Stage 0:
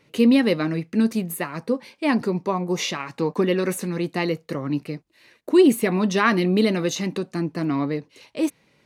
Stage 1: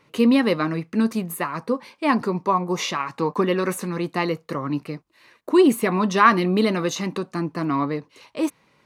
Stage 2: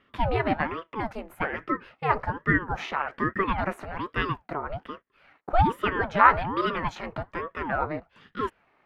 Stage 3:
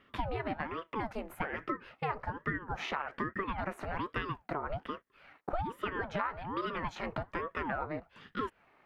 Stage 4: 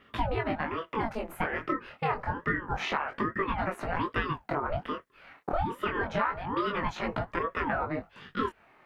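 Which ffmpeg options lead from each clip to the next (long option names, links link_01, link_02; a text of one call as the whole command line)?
ffmpeg -i in.wav -af "equalizer=frequency=1100:width=1.9:gain=9.5,volume=-1dB" out.wav
ffmpeg -i in.wav -filter_complex "[0:a]acrossover=split=330 2500:gain=0.0891 1 0.0794[link_01][link_02][link_03];[link_01][link_02][link_03]amix=inputs=3:normalize=0,aeval=exprs='val(0)*sin(2*PI*490*n/s+490*0.7/1.2*sin(2*PI*1.2*n/s))':channel_layout=same,volume=1.5dB" out.wav
ffmpeg -i in.wav -af "acompressor=threshold=-31dB:ratio=12" out.wav
ffmpeg -i in.wav -af "flanger=delay=17.5:depth=7.6:speed=0.27,volume=8.5dB" out.wav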